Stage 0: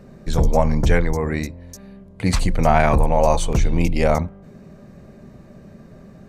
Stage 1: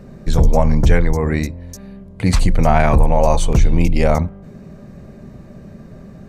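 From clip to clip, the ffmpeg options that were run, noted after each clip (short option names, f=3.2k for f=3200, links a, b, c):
-filter_complex "[0:a]lowshelf=f=200:g=4.5,asplit=2[a][b];[b]alimiter=limit=-11dB:level=0:latency=1:release=180,volume=-2dB[c];[a][c]amix=inputs=2:normalize=0,volume=-2dB"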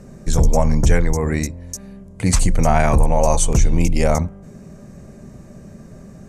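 -af "aexciter=amount=7.3:drive=1.5:freq=5.8k,lowpass=8k,volume=-2dB"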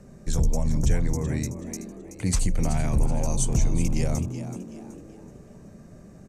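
-filter_complex "[0:a]acrossover=split=350|3000[a][b][c];[b]acompressor=threshold=-33dB:ratio=2.5[d];[a][d][c]amix=inputs=3:normalize=0,asplit=2[e][f];[f]asplit=4[g][h][i][j];[g]adelay=377,afreqshift=100,volume=-11.5dB[k];[h]adelay=754,afreqshift=200,volume=-19.9dB[l];[i]adelay=1131,afreqshift=300,volume=-28.3dB[m];[j]adelay=1508,afreqshift=400,volume=-36.7dB[n];[k][l][m][n]amix=inputs=4:normalize=0[o];[e][o]amix=inputs=2:normalize=0,volume=-7.5dB"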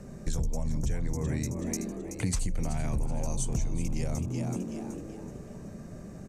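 -af "acompressor=threshold=-30dB:ratio=6,volume=3.5dB"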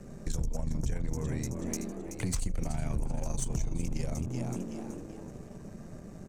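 -af "aeval=exprs='if(lt(val(0),0),0.447*val(0),val(0))':c=same"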